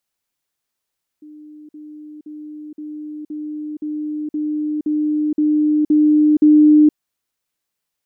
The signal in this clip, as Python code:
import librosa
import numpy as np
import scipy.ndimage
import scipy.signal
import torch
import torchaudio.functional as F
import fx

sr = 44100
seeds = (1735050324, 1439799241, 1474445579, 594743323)

y = fx.level_ladder(sr, hz=302.0, from_db=-36.5, step_db=3.0, steps=11, dwell_s=0.47, gap_s=0.05)